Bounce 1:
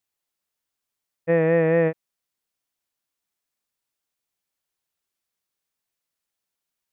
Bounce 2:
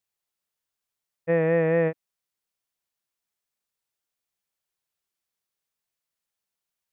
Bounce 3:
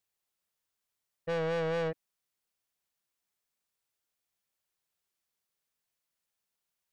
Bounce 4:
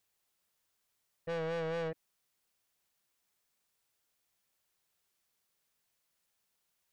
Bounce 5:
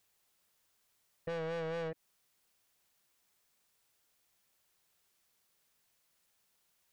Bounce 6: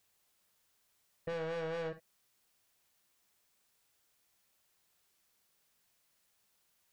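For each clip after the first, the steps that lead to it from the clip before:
peaking EQ 280 Hz -7 dB 0.23 oct; trim -2.5 dB
saturation -29.5 dBFS, distortion -7 dB
peak limiter -39.5 dBFS, peak gain reduction 10 dB; trim +5.5 dB
compression, threshold -42 dBFS, peak gain reduction 6.5 dB; trim +4.5 dB
gated-style reverb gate 80 ms rising, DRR 9.5 dB

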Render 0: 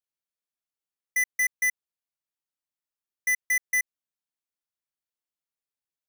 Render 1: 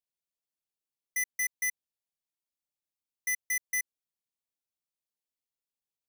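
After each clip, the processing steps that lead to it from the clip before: peaking EQ 1.5 kHz -12 dB 0.83 oct; trim -2 dB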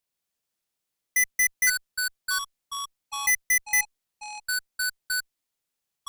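in parallel at -11 dB: Schmitt trigger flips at -32.5 dBFS; on the sum: ever faster or slower copies 119 ms, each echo -5 st, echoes 3, each echo -6 dB; trim +8 dB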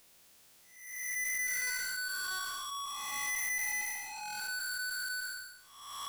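spectral blur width 338 ms; power-law waveshaper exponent 0.5; trim -8.5 dB

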